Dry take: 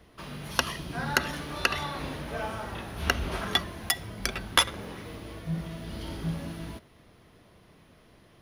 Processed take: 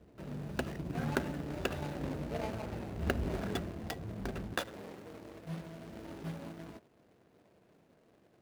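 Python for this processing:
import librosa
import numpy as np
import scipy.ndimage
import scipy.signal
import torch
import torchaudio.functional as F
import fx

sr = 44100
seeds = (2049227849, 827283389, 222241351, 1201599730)

y = scipy.signal.medfilt(x, 41)
y = fx.highpass(y, sr, hz=fx.steps((0.0, 87.0), (4.54, 540.0)), slope=6)
y = F.gain(torch.from_numpy(y), 1.0).numpy()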